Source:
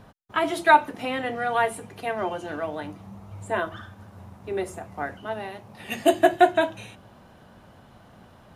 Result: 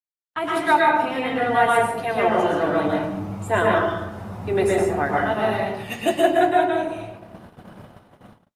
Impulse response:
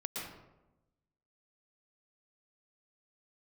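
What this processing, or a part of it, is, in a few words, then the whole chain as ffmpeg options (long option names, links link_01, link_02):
speakerphone in a meeting room: -filter_complex "[0:a]lowshelf=frequency=110:gain=-4[link_01];[1:a]atrim=start_sample=2205[link_02];[link_01][link_02]afir=irnorm=-1:irlink=0,dynaudnorm=framelen=140:gausssize=5:maxgain=15.5dB,agate=range=-59dB:threshold=-32dB:ratio=16:detection=peak,volume=-5dB" -ar 48000 -c:a libopus -b:a 32k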